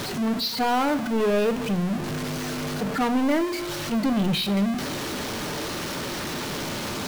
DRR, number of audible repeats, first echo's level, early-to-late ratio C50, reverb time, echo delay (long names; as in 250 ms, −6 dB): 10.0 dB, no echo audible, no echo audible, 16.0 dB, 0.90 s, no echo audible